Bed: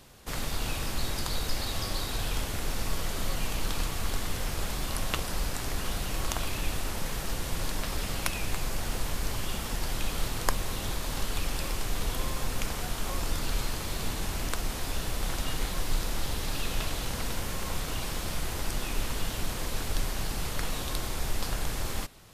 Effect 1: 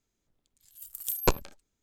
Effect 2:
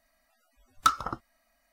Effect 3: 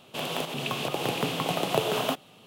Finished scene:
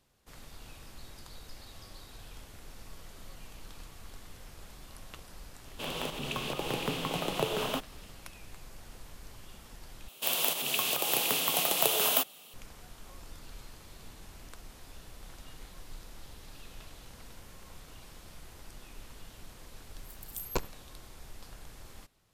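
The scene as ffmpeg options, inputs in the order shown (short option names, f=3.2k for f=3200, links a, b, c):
-filter_complex "[3:a]asplit=2[a][b];[0:a]volume=-17.5dB[c];[a]equalizer=f=700:t=o:w=0.25:g=-5.5[d];[b]aemphasis=mode=production:type=riaa[e];[c]asplit=2[f][g];[f]atrim=end=10.084[h];[e]atrim=end=2.46,asetpts=PTS-STARTPTS,volume=-3.5dB[i];[g]atrim=start=12.536[j];[d]atrim=end=2.46,asetpts=PTS-STARTPTS,volume=-4.5dB,afade=t=in:d=0.004:c=hsin,afade=t=out:st=2.456:d=0.004:c=hsin,adelay=249165S[k];[1:a]atrim=end=1.82,asetpts=PTS-STARTPTS,volume=-8.5dB,afade=t=in:d=0.004:c=hsin,afade=t=out:st=1.816:d=0.004:c=hsin,adelay=19280[l];[h][i]acrossfade=d=0.004:c1=hsin:c2=hsin[m];[m][j]acrossfade=d=0.004:c1=hsin:c2=hsin[n];[n][k][l]amix=inputs=3:normalize=0"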